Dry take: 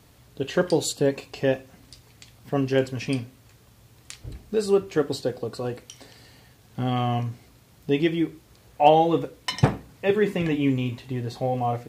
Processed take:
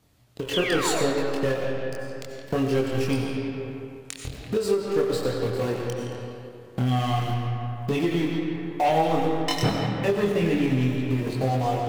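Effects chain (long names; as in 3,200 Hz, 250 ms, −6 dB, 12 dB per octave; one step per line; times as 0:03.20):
in parallel at −8 dB: centre clipping without the shift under −30.5 dBFS
on the sum: leveller curve on the samples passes 3
sound drawn into the spectrogram fall, 0:00.53–0:01.06, 420–3,600 Hz −16 dBFS
multi-voice chorus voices 2, 0.26 Hz, delay 24 ms, depth 1.5 ms
comb and all-pass reverb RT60 1.8 s, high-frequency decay 0.65×, pre-delay 50 ms, DRR 3.5 dB
downward compressor 2 to 1, threshold −30 dBFS, peak gain reduction 14.5 dB
on a send: echo through a band-pass that steps 169 ms, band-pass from 3,700 Hz, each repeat −0.7 octaves, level −7 dB
on the sum: every ending faded ahead of time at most 140 dB per second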